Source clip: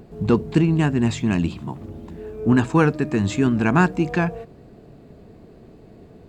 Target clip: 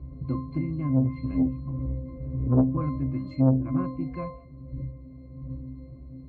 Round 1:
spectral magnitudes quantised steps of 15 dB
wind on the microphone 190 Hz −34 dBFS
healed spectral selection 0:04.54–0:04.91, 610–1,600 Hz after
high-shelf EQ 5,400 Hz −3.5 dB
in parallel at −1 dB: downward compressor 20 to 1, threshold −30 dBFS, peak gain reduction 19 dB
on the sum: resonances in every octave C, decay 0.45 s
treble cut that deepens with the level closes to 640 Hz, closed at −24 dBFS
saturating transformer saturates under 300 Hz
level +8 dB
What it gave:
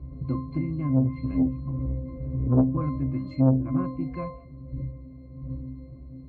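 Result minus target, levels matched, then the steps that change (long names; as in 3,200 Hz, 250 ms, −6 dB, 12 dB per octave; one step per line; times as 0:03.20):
downward compressor: peak gain reduction −7 dB
change: downward compressor 20 to 1, threshold −37.5 dBFS, peak gain reduction 26.5 dB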